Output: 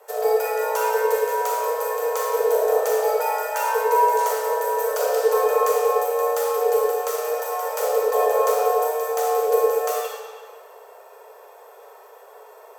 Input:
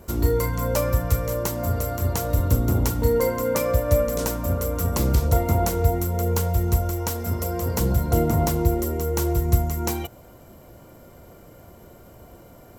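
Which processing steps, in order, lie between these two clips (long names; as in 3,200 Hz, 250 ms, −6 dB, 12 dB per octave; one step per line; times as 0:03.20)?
frequency shifter +380 Hz
comb and all-pass reverb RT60 1.8 s, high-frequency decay 0.85×, pre-delay 0 ms, DRR −4 dB
level −4.5 dB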